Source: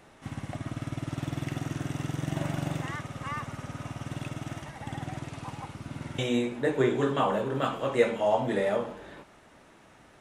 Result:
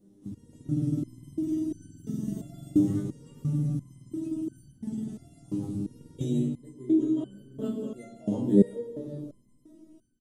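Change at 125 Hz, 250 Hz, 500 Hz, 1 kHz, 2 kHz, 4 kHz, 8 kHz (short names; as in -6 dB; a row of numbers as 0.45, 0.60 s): +1.0 dB, +6.0 dB, -6.0 dB, under -20 dB, under -20 dB, under -15 dB, n/a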